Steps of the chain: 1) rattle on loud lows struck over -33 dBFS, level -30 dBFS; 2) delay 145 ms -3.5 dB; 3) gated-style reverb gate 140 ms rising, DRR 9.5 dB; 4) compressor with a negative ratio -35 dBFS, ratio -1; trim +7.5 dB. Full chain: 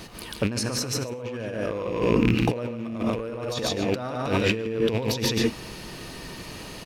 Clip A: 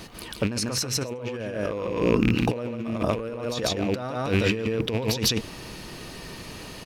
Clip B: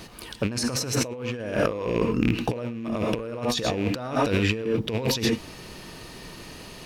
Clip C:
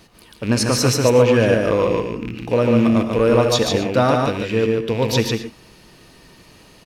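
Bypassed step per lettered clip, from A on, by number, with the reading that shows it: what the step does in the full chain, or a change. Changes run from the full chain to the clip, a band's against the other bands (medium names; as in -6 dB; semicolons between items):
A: 3, 8 kHz band +2.5 dB; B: 2, momentary loudness spread change +2 LU; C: 4, crest factor change -2.0 dB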